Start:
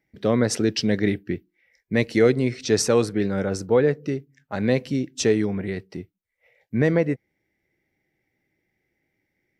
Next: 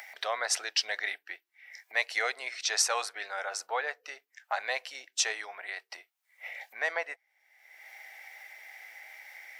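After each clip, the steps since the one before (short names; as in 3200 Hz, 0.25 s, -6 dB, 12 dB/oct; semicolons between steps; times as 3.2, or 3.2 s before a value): upward compressor, threshold -22 dBFS; Chebyshev high-pass 710 Hz, order 4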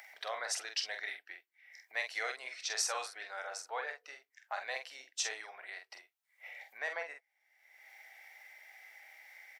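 doubler 46 ms -6 dB; gain -8 dB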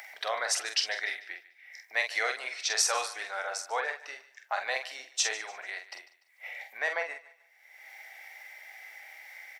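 thinning echo 0.147 s, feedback 36%, high-pass 440 Hz, level -17 dB; gain +7.5 dB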